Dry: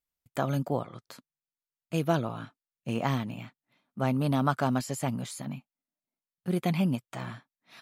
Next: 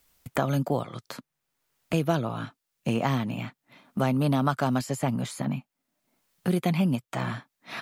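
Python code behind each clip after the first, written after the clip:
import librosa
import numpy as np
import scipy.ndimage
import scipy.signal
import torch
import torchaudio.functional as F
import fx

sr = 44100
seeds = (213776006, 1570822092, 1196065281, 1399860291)

y = fx.band_squash(x, sr, depth_pct=70)
y = y * librosa.db_to_amplitude(3.0)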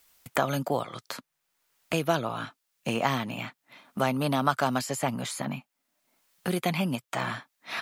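y = fx.low_shelf(x, sr, hz=380.0, db=-11.5)
y = y * librosa.db_to_amplitude(4.0)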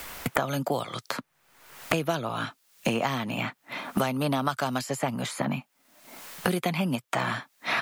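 y = fx.band_squash(x, sr, depth_pct=100)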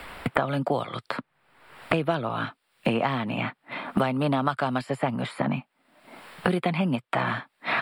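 y = np.convolve(x, np.full(7, 1.0 / 7))[:len(x)]
y = y * librosa.db_to_amplitude(2.5)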